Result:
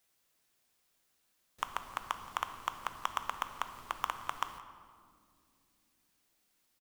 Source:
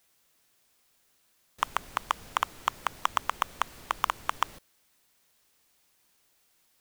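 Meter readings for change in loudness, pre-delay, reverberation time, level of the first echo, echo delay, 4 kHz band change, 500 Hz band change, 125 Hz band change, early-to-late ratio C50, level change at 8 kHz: −7.0 dB, 4 ms, 2.5 s, −21.5 dB, 172 ms, −7.0 dB, −7.0 dB, −6.5 dB, 10.5 dB, −7.0 dB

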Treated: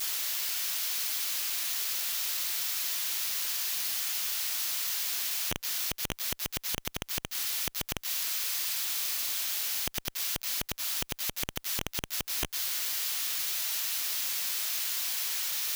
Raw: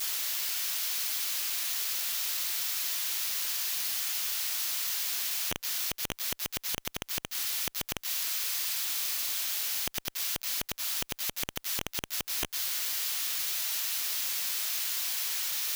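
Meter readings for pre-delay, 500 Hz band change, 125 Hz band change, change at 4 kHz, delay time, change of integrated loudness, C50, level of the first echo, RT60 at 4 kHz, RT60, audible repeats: no reverb audible, +0.5 dB, +4.0 dB, 0.0 dB, no echo audible, 0.0 dB, no reverb audible, no echo audible, no reverb audible, no reverb audible, no echo audible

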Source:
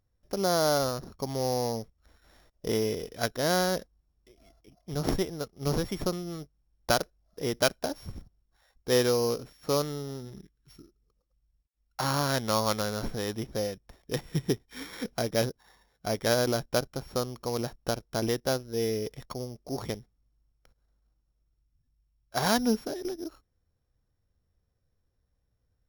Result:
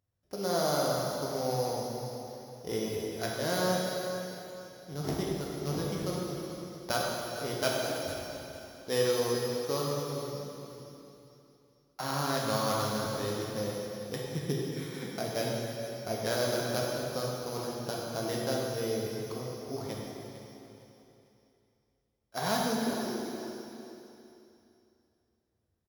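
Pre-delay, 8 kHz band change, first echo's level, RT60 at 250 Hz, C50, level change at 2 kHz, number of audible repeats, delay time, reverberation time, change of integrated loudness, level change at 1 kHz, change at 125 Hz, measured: 7 ms, −2.0 dB, −12.5 dB, 3.0 s, −1.5 dB, −2.5 dB, 3, 453 ms, 3.0 s, −3.0 dB, −2.0 dB, −2.5 dB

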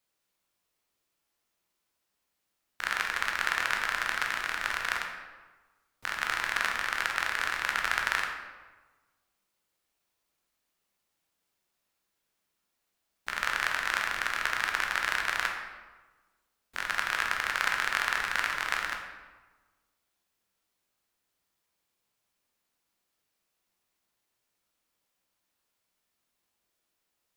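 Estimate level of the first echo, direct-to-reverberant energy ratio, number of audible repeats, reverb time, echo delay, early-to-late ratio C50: no echo audible, 1.0 dB, no echo audible, 1.3 s, no echo audible, 4.0 dB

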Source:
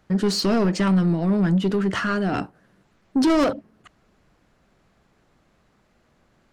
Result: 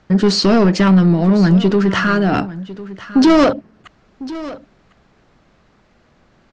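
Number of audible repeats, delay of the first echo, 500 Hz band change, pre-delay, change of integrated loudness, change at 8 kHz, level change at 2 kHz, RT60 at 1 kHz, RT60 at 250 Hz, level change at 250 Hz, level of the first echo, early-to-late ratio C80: 1, 1,051 ms, +8.0 dB, no reverb audible, +8.0 dB, can't be measured, +8.0 dB, no reverb audible, no reverb audible, +8.0 dB, −16.5 dB, no reverb audible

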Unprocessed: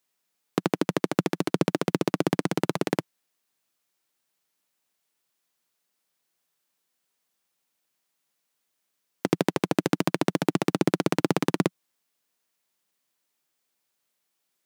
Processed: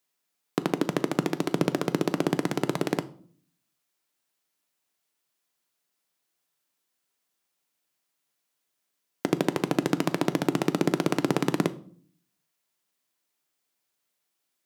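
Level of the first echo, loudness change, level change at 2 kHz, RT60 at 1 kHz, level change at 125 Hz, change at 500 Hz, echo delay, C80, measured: no echo audible, −1.0 dB, −1.5 dB, 0.45 s, −1.5 dB, −1.0 dB, no echo audible, 22.5 dB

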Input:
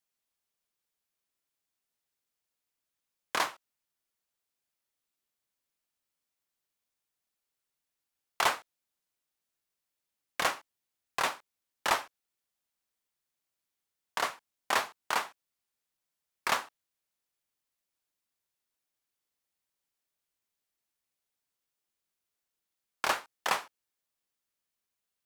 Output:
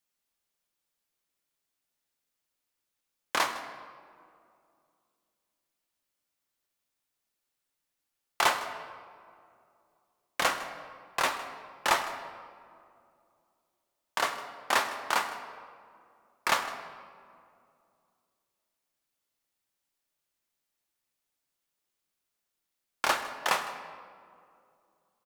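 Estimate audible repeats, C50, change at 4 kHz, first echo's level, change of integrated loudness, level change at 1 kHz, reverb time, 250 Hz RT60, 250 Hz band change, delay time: 1, 9.0 dB, +2.5 dB, −17.0 dB, +1.5 dB, +3.0 dB, 2.4 s, 2.8 s, +3.5 dB, 157 ms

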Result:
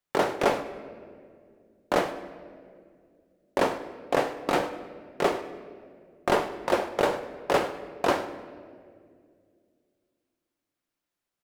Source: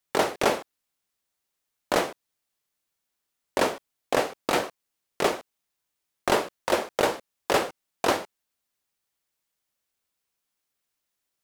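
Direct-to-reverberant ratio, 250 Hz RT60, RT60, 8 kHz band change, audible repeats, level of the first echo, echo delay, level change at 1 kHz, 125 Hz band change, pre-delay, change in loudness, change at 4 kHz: 8.5 dB, 3.1 s, 2.2 s, −7.5 dB, 1, −18.0 dB, 100 ms, 0.0 dB, +1.0 dB, 6 ms, −1.0 dB, −4.5 dB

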